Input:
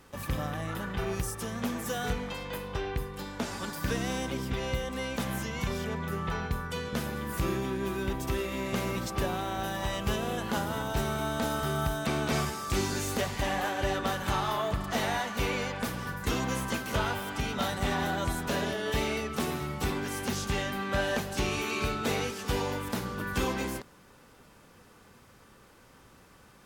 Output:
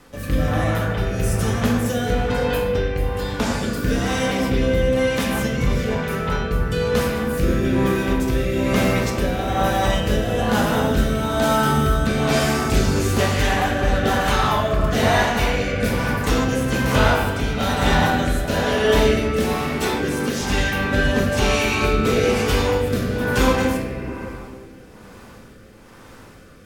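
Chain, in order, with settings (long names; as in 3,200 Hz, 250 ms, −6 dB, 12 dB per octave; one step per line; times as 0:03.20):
0:19.80–0:20.40: high-pass filter 210 Hz 12 dB per octave
convolution reverb RT60 2.7 s, pre-delay 4 ms, DRR −3.5 dB
rotating-speaker cabinet horn 1.1 Hz
level +9 dB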